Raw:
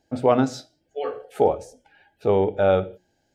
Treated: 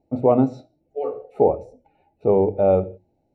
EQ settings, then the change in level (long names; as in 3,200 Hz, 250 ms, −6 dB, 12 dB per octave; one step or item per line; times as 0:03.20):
moving average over 27 samples
mains-hum notches 50/100 Hz
+3.5 dB